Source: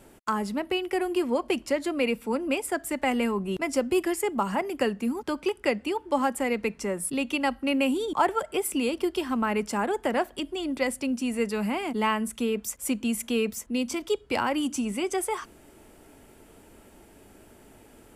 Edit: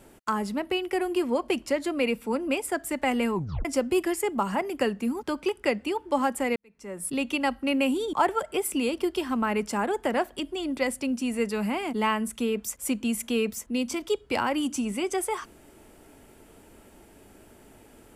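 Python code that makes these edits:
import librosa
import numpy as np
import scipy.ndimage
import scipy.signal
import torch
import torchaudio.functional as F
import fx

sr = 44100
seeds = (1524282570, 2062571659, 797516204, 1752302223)

y = fx.edit(x, sr, fx.tape_stop(start_s=3.35, length_s=0.3),
    fx.fade_in_span(start_s=6.56, length_s=0.55, curve='qua'), tone=tone)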